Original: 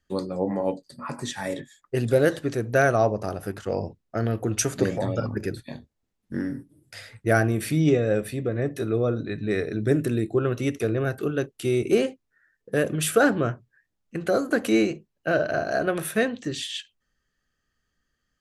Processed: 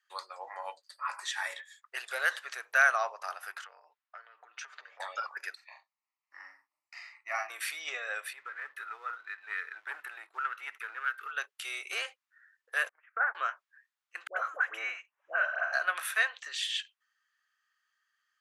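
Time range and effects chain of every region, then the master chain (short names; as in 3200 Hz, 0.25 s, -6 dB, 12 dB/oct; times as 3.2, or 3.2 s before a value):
3.64–5 air absorption 190 m + comb 6.7 ms, depth 42% + compressor 12:1, threshold -36 dBFS
5.55–7.5 high shelf 3100 Hz -9.5 dB + fixed phaser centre 2300 Hz, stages 8 + doubler 39 ms -4.5 dB
8.33–11.31 EQ curve 120 Hz 0 dB, 250 Hz -6 dB, 500 Hz -10 dB, 840 Hz -29 dB, 1300 Hz 0 dB, 5800 Hz -22 dB, 12000 Hz -11 dB + sample leveller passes 1
12.89–13.35 gate -23 dBFS, range -35 dB + compressor 2:1, threshold -23 dBFS + elliptic low-pass 2100 Hz, stop band 50 dB
14.27–15.73 upward compressor, threshold -41 dBFS + running mean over 10 samples + dispersion highs, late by 99 ms, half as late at 850 Hz
whole clip: inverse Chebyshev high-pass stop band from 240 Hz, stop band 70 dB; high shelf 3500 Hz -10.5 dB; gain +4.5 dB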